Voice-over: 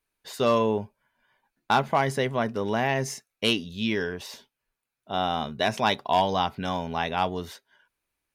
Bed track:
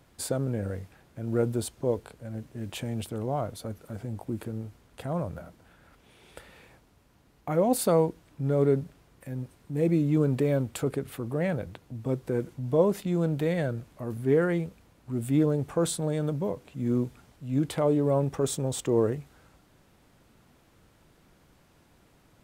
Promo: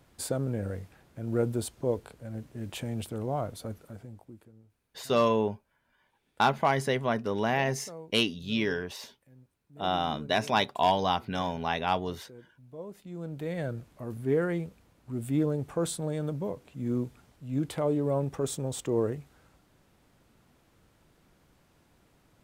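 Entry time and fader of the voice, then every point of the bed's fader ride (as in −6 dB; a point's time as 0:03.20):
4.70 s, −2.0 dB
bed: 0:03.75 −1.5 dB
0:04.53 −21.5 dB
0:12.71 −21.5 dB
0:13.69 −3.5 dB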